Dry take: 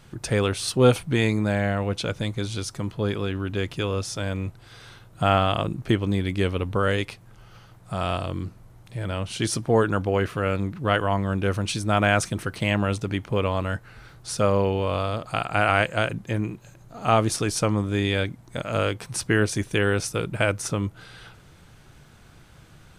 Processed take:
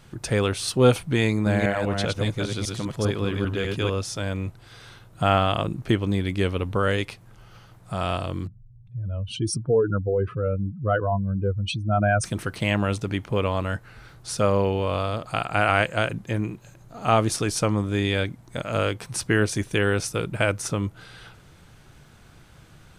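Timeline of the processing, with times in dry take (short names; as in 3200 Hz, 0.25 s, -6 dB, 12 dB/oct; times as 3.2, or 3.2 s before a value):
1.26–3.9 reverse delay 0.199 s, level -3 dB
8.47–12.24 spectral contrast raised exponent 2.5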